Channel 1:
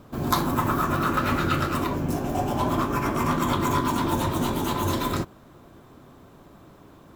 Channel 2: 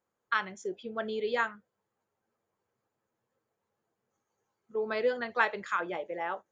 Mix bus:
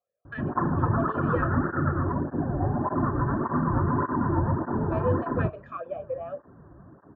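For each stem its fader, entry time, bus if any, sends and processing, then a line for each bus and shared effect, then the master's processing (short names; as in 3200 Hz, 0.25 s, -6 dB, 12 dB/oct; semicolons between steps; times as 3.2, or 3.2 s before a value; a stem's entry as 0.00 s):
-0.5 dB, 0.25 s, no send, Chebyshev low-pass 1800 Hz, order 8; tape flanging out of phase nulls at 1.7 Hz, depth 5.1 ms
+1.0 dB, 0.00 s, no send, tilt -3 dB/oct; comb 1.7 ms, depth 75%; vowel sweep a-e 4 Hz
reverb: off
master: bell 63 Hz +9 dB 2.9 oct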